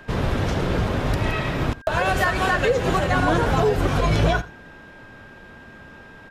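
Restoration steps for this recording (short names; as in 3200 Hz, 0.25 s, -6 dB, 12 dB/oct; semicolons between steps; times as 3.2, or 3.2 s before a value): notch 1600 Hz, Q 30; inverse comb 85 ms -18.5 dB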